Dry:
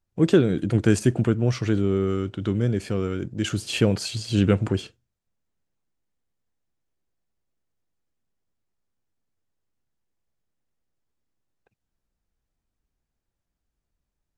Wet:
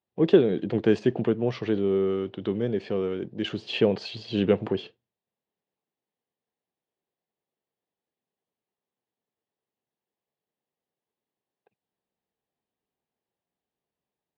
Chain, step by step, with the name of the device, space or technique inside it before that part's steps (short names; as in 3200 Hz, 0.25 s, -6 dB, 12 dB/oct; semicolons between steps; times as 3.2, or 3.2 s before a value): kitchen radio (speaker cabinet 220–3800 Hz, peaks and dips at 290 Hz -4 dB, 430 Hz +4 dB, 790 Hz +3 dB, 1400 Hz -9 dB, 2300 Hz -4 dB)